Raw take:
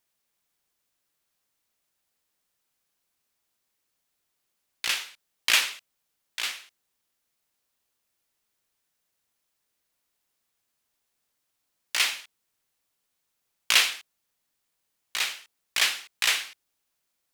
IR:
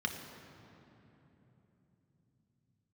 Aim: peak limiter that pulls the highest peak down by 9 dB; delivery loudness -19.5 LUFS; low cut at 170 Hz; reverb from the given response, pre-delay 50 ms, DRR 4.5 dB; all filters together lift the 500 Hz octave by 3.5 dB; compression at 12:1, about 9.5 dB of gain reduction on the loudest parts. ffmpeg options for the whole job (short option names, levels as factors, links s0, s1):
-filter_complex "[0:a]highpass=170,equalizer=f=500:t=o:g=4.5,acompressor=threshold=0.0631:ratio=12,alimiter=limit=0.133:level=0:latency=1,asplit=2[s0][s1];[1:a]atrim=start_sample=2205,adelay=50[s2];[s1][s2]afir=irnorm=-1:irlink=0,volume=0.355[s3];[s0][s3]amix=inputs=2:normalize=0,volume=4.47"